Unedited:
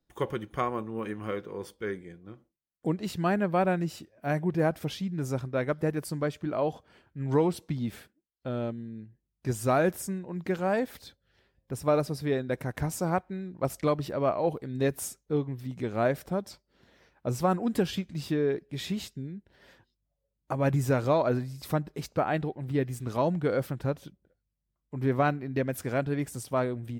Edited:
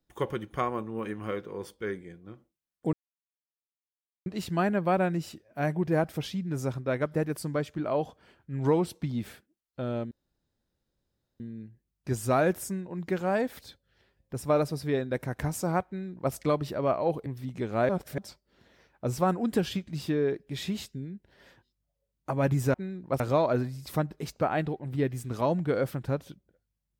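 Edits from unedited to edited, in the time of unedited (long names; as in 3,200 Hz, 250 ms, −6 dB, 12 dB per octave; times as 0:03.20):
0:02.93: splice in silence 1.33 s
0:08.78: splice in room tone 1.29 s
0:13.25–0:13.71: duplicate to 0:20.96
0:14.64–0:15.48: remove
0:16.11–0:16.40: reverse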